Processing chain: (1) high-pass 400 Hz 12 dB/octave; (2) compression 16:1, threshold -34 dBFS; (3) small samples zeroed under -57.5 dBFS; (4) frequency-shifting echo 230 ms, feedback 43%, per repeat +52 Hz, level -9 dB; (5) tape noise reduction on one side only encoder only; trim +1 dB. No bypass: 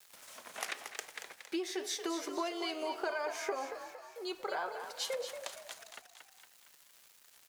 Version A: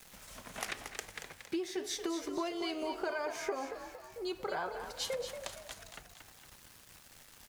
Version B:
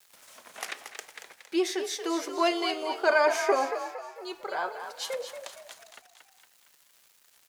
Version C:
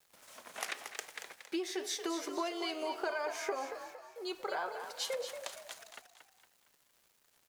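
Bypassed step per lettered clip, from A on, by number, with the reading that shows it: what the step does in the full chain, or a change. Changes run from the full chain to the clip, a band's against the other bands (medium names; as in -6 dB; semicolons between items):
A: 1, 250 Hz band +3.0 dB; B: 2, mean gain reduction 4.0 dB; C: 5, momentary loudness spread change -9 LU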